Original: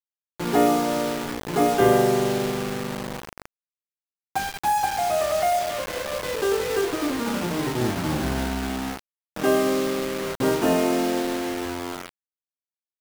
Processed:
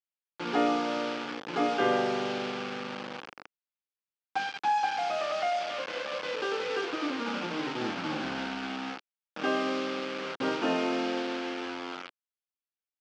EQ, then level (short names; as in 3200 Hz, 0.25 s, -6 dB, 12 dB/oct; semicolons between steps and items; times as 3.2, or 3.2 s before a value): speaker cabinet 360–4500 Hz, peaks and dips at 400 Hz -9 dB, 650 Hz -9 dB, 1000 Hz -6 dB, 1900 Hz -6 dB, 3900 Hz -5 dB; 0.0 dB